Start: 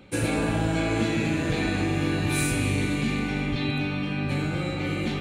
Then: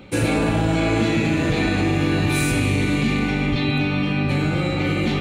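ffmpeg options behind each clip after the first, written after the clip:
ffmpeg -i in.wav -filter_complex "[0:a]bandreject=frequency=1600:width=20,asplit=2[link_01][link_02];[link_02]alimiter=limit=-20.5dB:level=0:latency=1,volume=3dB[link_03];[link_01][link_03]amix=inputs=2:normalize=0,equalizer=frequency=9600:width=1:gain=-4.5" out.wav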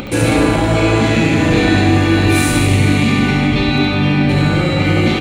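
ffmpeg -i in.wav -filter_complex "[0:a]acompressor=mode=upward:threshold=-25dB:ratio=2.5,asoftclip=type=tanh:threshold=-12dB,asplit=2[link_01][link_02];[link_02]aecho=0:1:70|154|254.8|375.8|520.9:0.631|0.398|0.251|0.158|0.1[link_03];[link_01][link_03]amix=inputs=2:normalize=0,volume=6.5dB" out.wav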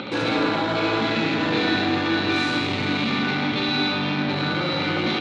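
ffmpeg -i in.wav -filter_complex "[0:a]asplit=2[link_01][link_02];[link_02]aeval=exprs='0.126*(abs(mod(val(0)/0.126+3,4)-2)-1)':channel_layout=same,volume=-4.5dB[link_03];[link_01][link_03]amix=inputs=2:normalize=0,highpass=190,equalizer=frequency=940:width_type=q:width=4:gain=4,equalizer=frequency=1400:width_type=q:width=4:gain=6,equalizer=frequency=3800:width_type=q:width=4:gain=8,lowpass=frequency=5100:width=0.5412,lowpass=frequency=5100:width=1.3066,volume=-9dB" out.wav

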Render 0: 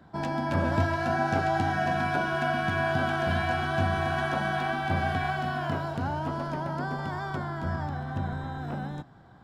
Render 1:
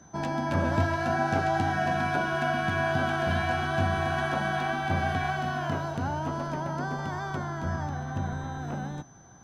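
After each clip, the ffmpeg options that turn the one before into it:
ffmpeg -i in.wav -af "aeval=exprs='val(0)+0.00141*sin(2*PI*6100*n/s)':channel_layout=same" out.wav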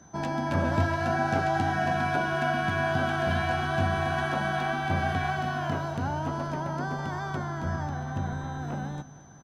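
ffmpeg -i in.wav -af "aecho=1:1:228|456|684|912|1140:0.119|0.0642|0.0347|0.0187|0.0101" out.wav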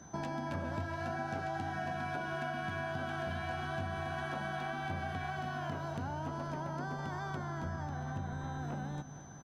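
ffmpeg -i in.wav -af "acompressor=threshold=-37dB:ratio=4" out.wav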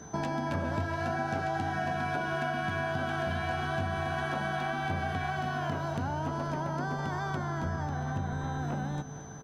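ffmpeg -i in.wav -af "aeval=exprs='val(0)+0.000891*sin(2*PI*440*n/s)':channel_layout=same,volume=6dB" out.wav

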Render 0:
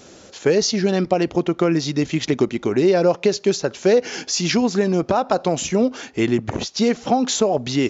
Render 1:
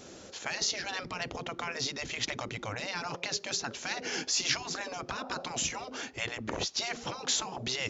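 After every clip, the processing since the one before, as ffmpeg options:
ffmpeg -i in.wav -af "afftfilt=real='re*lt(hypot(re,im),0.251)':imag='im*lt(hypot(re,im),0.251)':win_size=1024:overlap=0.75,volume=-4.5dB" out.wav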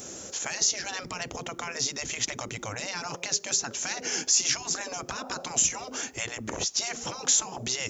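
ffmpeg -i in.wav -filter_complex "[0:a]asplit=2[link_01][link_02];[link_02]acompressor=threshold=-39dB:ratio=6,volume=3dB[link_03];[link_01][link_03]amix=inputs=2:normalize=0,aexciter=amount=6.4:drive=0.8:freq=5900,volume=-3.5dB" out.wav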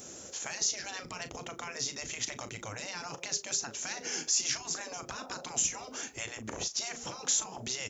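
ffmpeg -i in.wav -filter_complex "[0:a]asplit=2[link_01][link_02];[link_02]adelay=37,volume=-11.5dB[link_03];[link_01][link_03]amix=inputs=2:normalize=0,volume=-6dB" out.wav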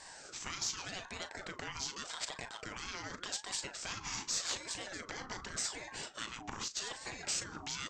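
ffmpeg -i in.wav -af "aeval=exprs='(tanh(12.6*val(0)+0.35)-tanh(0.35))/12.6':channel_layout=same,highpass=220,lowpass=5600,aeval=exprs='val(0)*sin(2*PI*930*n/s+930*0.45/0.85*sin(2*PI*0.85*n/s))':channel_layout=same,volume=2dB" out.wav

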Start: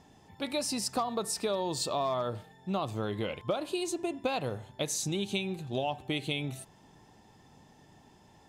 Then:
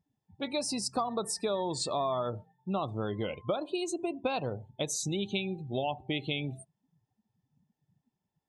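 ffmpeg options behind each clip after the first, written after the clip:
ffmpeg -i in.wav -af "afftdn=noise_reduction=30:noise_floor=-42" out.wav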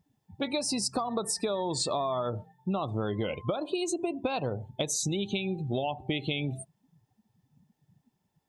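ffmpeg -i in.wav -af "acompressor=threshold=-35dB:ratio=6,volume=8dB" out.wav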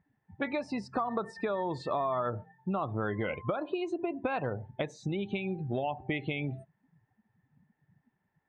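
ffmpeg -i in.wav -af "lowpass=frequency=1800:width_type=q:width=3.8,volume=-2.5dB" out.wav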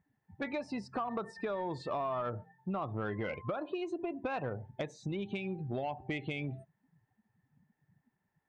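ffmpeg -i in.wav -af "asoftclip=type=tanh:threshold=-22.5dB,volume=-3dB" out.wav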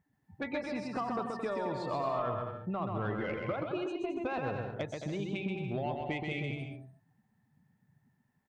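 ffmpeg -i in.wav -af "aecho=1:1:130|221|284.7|329.3|360.5:0.631|0.398|0.251|0.158|0.1" out.wav

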